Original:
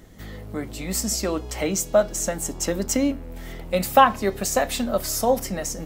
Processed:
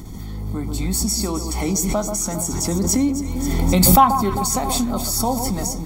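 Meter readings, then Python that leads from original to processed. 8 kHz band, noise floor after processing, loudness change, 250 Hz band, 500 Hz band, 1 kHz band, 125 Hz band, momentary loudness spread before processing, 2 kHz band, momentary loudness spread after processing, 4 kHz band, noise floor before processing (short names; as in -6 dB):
+5.5 dB, -30 dBFS, +3.5 dB, +6.5 dB, -3.5 dB, +3.0 dB, +11.0 dB, 16 LU, -4.5 dB, 11 LU, +4.5 dB, -37 dBFS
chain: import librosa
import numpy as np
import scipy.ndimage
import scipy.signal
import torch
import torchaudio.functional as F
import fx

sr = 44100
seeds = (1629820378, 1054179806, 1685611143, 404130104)

y = fx.band_shelf(x, sr, hz=2000.0, db=-8.0, octaves=1.7)
y = y + 0.75 * np.pad(y, (int(0.9 * sr / 1000.0), 0))[:len(y)]
y = fx.echo_alternate(y, sr, ms=133, hz=1300.0, feedback_pct=69, wet_db=-8.0)
y = fx.pre_swell(y, sr, db_per_s=22.0)
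y = F.gain(torch.from_numpy(y), 1.0).numpy()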